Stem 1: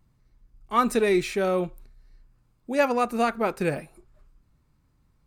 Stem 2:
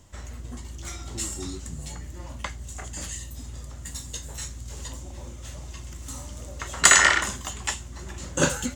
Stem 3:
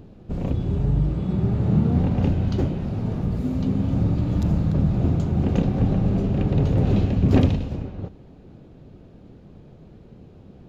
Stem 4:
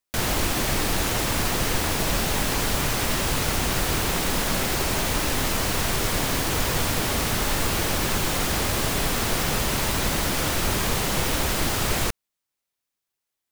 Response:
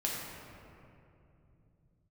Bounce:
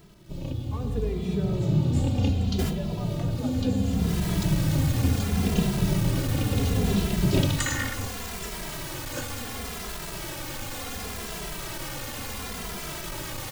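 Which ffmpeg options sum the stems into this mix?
-filter_complex "[0:a]equalizer=frequency=610:width_type=o:width=2:gain=9,acrossover=split=480[link_01][link_02];[link_02]acompressor=threshold=-28dB:ratio=6[link_03];[link_01][link_03]amix=inputs=2:normalize=0,volume=-16dB,asplit=3[link_04][link_05][link_06];[link_05]volume=-6dB[link_07];[1:a]adelay=750,volume=-12dB[link_08];[2:a]dynaudnorm=framelen=310:gausssize=9:maxgain=5.5dB,highshelf=frequency=2500:width_type=q:width=1.5:gain=10,volume=-5dB[link_09];[3:a]volume=25.5dB,asoftclip=hard,volume=-25.5dB,adelay=2450,volume=-4dB[link_10];[link_06]apad=whole_len=704172[link_11];[link_10][link_11]sidechaincompress=threshold=-54dB:ratio=8:attack=38:release=330[link_12];[4:a]atrim=start_sample=2205[link_13];[link_07][link_13]afir=irnorm=-1:irlink=0[link_14];[link_04][link_08][link_09][link_12][link_14]amix=inputs=5:normalize=0,acrusher=bits=8:mix=0:aa=0.000001,asplit=2[link_15][link_16];[link_16]adelay=2.6,afreqshift=-0.7[link_17];[link_15][link_17]amix=inputs=2:normalize=1"

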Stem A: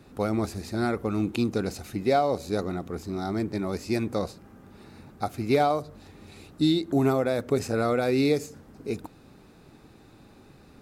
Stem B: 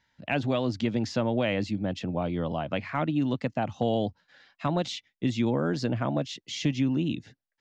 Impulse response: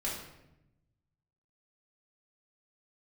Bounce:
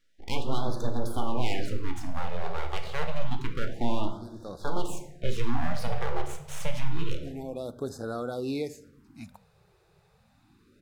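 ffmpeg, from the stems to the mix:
-filter_complex "[0:a]adelay=300,volume=-9.5dB,asplit=2[link_01][link_02];[link_02]volume=-19.5dB[link_03];[1:a]aeval=exprs='abs(val(0))':channel_layout=same,volume=-5.5dB,asplit=3[link_04][link_05][link_06];[link_05]volume=-4dB[link_07];[link_06]apad=whole_len=490365[link_08];[link_01][link_08]sidechaincompress=threshold=-51dB:ratio=8:attack=16:release=352[link_09];[2:a]atrim=start_sample=2205[link_10];[link_03][link_07]amix=inputs=2:normalize=0[link_11];[link_11][link_10]afir=irnorm=-1:irlink=0[link_12];[link_09][link_04][link_12]amix=inputs=3:normalize=0,afftfilt=real='re*(1-between(b*sr/1024,240*pow(2500/240,0.5+0.5*sin(2*PI*0.28*pts/sr))/1.41,240*pow(2500/240,0.5+0.5*sin(2*PI*0.28*pts/sr))*1.41))':imag='im*(1-between(b*sr/1024,240*pow(2500/240,0.5+0.5*sin(2*PI*0.28*pts/sr))/1.41,240*pow(2500/240,0.5+0.5*sin(2*PI*0.28*pts/sr))*1.41))':win_size=1024:overlap=0.75"

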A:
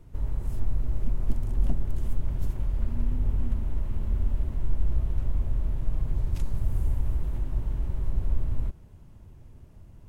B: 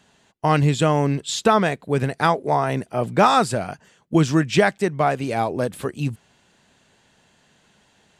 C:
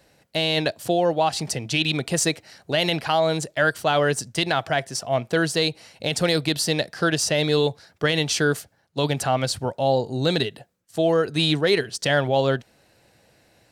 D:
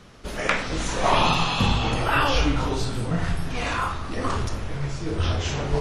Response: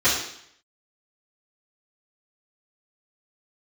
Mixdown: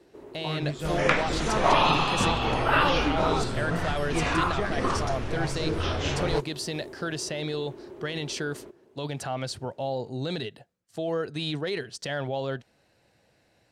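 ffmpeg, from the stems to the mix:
-filter_complex "[0:a]highpass=frequency=370:width_type=q:width=4.6,volume=-2.5dB[link_01];[1:a]flanger=delay=17.5:depth=2.5:speed=0.5,volume=-12dB[link_02];[2:a]alimiter=limit=-14.5dB:level=0:latency=1:release=21,volume=-6.5dB[link_03];[3:a]adynamicequalizer=threshold=0.00708:dfrequency=6600:dqfactor=0.8:tfrequency=6600:tqfactor=0.8:attack=5:release=100:ratio=0.375:range=3:mode=cutabove:tftype=bell,acrossover=split=280[link_04][link_05];[link_04]acompressor=threshold=-28dB:ratio=6[link_06];[link_06][link_05]amix=inputs=2:normalize=0,adelay=600,volume=0dB[link_07];[link_01][link_02][link_03][link_07]amix=inputs=4:normalize=0,highshelf=frequency=10000:gain=-11"

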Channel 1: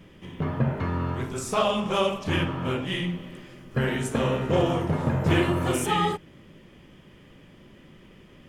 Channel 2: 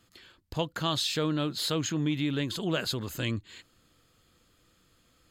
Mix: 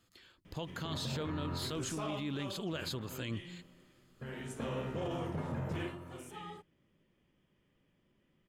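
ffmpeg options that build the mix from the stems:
ffmpeg -i stem1.wav -i stem2.wav -filter_complex "[0:a]adelay=450,volume=1.5dB,afade=type=out:start_time=2.02:duration=0.23:silence=0.237137,afade=type=in:start_time=4.24:duration=0.5:silence=0.316228,afade=type=out:start_time=5.69:duration=0.27:silence=0.251189[link_01];[1:a]volume=-6.5dB[link_02];[link_01][link_02]amix=inputs=2:normalize=0,alimiter=level_in=5.5dB:limit=-24dB:level=0:latency=1:release=26,volume=-5.5dB" out.wav

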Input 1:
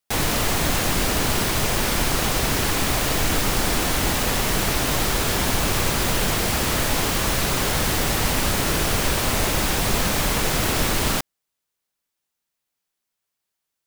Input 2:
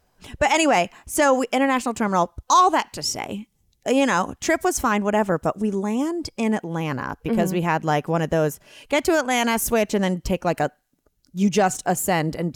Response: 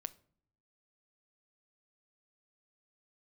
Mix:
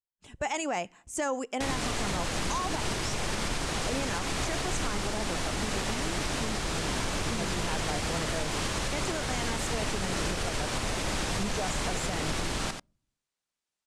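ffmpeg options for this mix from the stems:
-filter_complex "[0:a]adelay=1500,volume=-6dB,asplit=3[link_01][link_02][link_03];[link_02]volume=-14.5dB[link_04];[link_03]volume=-8dB[link_05];[1:a]agate=range=-33dB:threshold=-43dB:ratio=3:detection=peak,aexciter=amount=1.9:drive=4.9:freq=6800,volume=-13dB,asplit=2[link_06][link_07];[link_07]volume=-8.5dB[link_08];[2:a]atrim=start_sample=2205[link_09];[link_04][link_08]amix=inputs=2:normalize=0[link_10];[link_10][link_09]afir=irnorm=-1:irlink=0[link_11];[link_05]aecho=0:1:89:1[link_12];[link_01][link_06][link_11][link_12]amix=inputs=4:normalize=0,lowpass=frequency=9100:width=0.5412,lowpass=frequency=9100:width=1.3066,alimiter=limit=-20.5dB:level=0:latency=1:release=251"

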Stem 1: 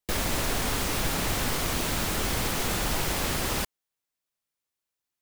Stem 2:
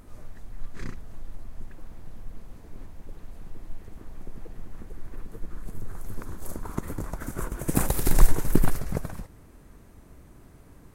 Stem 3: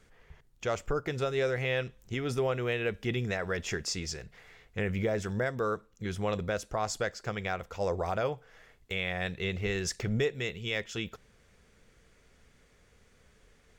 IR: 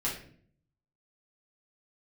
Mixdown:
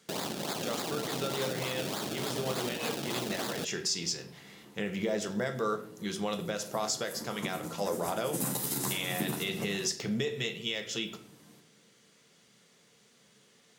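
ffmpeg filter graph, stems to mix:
-filter_complex "[0:a]acrusher=samples=30:mix=1:aa=0.000001:lfo=1:lforange=30:lforate=3.4,volume=-1dB[link_01];[1:a]asplit=2[link_02][link_03];[link_03]adelay=11,afreqshift=0.47[link_04];[link_02][link_04]amix=inputs=2:normalize=1,adelay=650,volume=-5.5dB,asplit=2[link_05][link_06];[link_06]volume=-6dB[link_07];[2:a]volume=-2.5dB,asplit=2[link_08][link_09];[link_09]volume=-8.5dB[link_10];[3:a]atrim=start_sample=2205[link_11];[link_07][link_10]amix=inputs=2:normalize=0[link_12];[link_12][link_11]afir=irnorm=-1:irlink=0[link_13];[link_01][link_05][link_08][link_13]amix=inputs=4:normalize=0,highpass=frequency=150:width=0.5412,highpass=frequency=150:width=1.3066,highshelf=frequency=2700:width_type=q:width=1.5:gain=6,alimiter=limit=-20dB:level=0:latency=1:release=178"

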